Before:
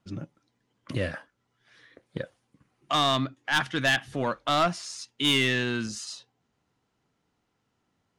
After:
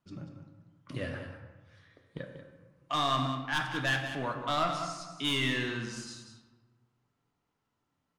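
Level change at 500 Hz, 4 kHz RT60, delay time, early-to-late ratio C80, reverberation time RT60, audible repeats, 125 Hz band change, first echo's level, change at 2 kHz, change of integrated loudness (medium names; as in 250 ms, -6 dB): -6.5 dB, 0.75 s, 189 ms, 6.0 dB, 1.3 s, 1, -3.5 dB, -10.0 dB, -5.5 dB, -5.5 dB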